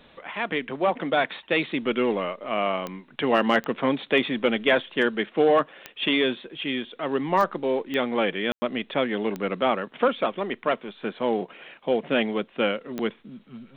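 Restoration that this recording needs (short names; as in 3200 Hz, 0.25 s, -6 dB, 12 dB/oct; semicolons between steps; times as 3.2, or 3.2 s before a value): clip repair -9.5 dBFS; de-click; room tone fill 8.52–8.62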